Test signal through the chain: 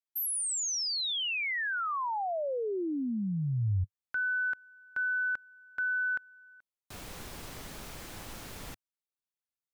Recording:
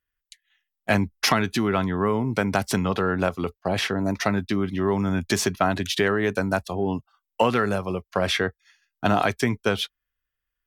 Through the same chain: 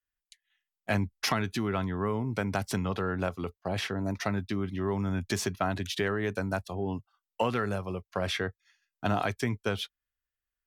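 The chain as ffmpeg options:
-af "adynamicequalizer=threshold=0.00891:dfrequency=100:dqfactor=1.8:tfrequency=100:tqfactor=1.8:attack=5:release=100:ratio=0.375:range=2.5:mode=boostabove:tftype=bell,volume=0.398"

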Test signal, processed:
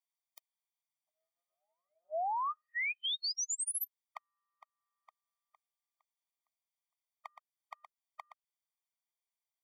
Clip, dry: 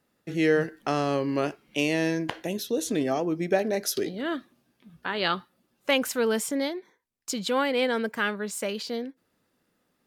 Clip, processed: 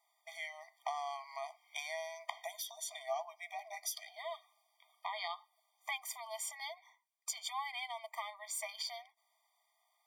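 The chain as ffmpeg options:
-filter_complex "[0:a]acrossover=split=250[s0][s1];[s1]acompressor=threshold=0.0178:ratio=4[s2];[s0][s2]amix=inputs=2:normalize=0,afftfilt=real='re*eq(mod(floor(b*sr/1024/620),2),1)':imag='im*eq(mod(floor(b*sr/1024/620),2),1)':win_size=1024:overlap=0.75,volume=1.19"

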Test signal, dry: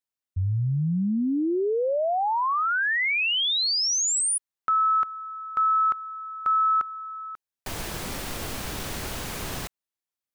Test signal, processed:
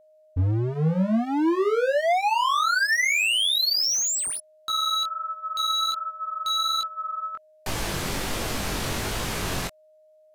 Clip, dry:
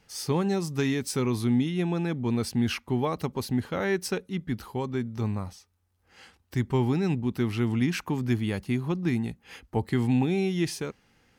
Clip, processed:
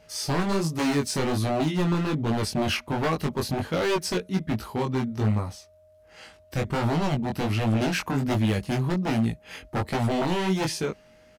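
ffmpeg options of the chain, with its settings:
-filter_complex "[0:a]aresample=32000,aresample=44100,aeval=exprs='0.0631*(abs(mod(val(0)/0.0631+3,4)-2)-1)':c=same,flanger=delay=18:depth=4.6:speed=1.3,acrossover=split=8100[s0][s1];[s1]acompressor=threshold=0.00501:ratio=4:attack=1:release=60[s2];[s0][s2]amix=inputs=2:normalize=0,aeval=exprs='val(0)+0.000794*sin(2*PI*620*n/s)':c=same,volume=2.51"

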